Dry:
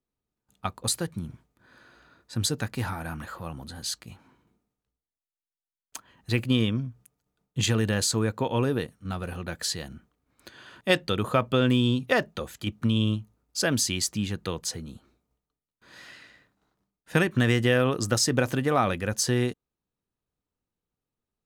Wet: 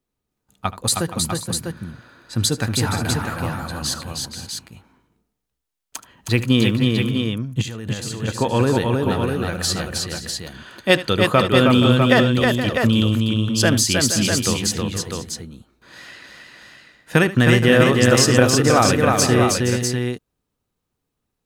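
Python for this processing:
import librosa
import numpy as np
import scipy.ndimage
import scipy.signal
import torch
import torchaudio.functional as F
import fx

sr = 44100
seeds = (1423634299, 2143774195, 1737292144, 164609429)

y = fx.level_steps(x, sr, step_db=19, at=(7.61, 8.27), fade=0.02)
y = fx.echo_multitap(y, sr, ms=(76, 315, 471, 528, 649), db=(-16.5, -3.5, -12.0, -16.5, -5.5))
y = y * librosa.db_to_amplitude(7.0)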